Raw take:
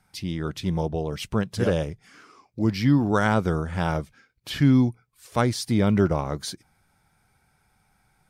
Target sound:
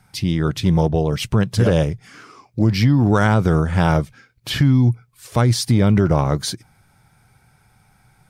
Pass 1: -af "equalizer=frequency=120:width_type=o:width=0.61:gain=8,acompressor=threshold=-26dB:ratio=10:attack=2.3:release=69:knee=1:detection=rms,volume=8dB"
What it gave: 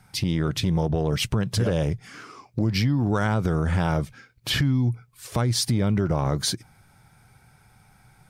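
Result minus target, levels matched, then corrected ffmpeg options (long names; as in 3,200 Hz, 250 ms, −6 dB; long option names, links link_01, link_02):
downward compressor: peak gain reduction +7.5 dB
-af "equalizer=frequency=120:width_type=o:width=0.61:gain=8,acompressor=threshold=-17.5dB:ratio=10:attack=2.3:release=69:knee=1:detection=rms,volume=8dB"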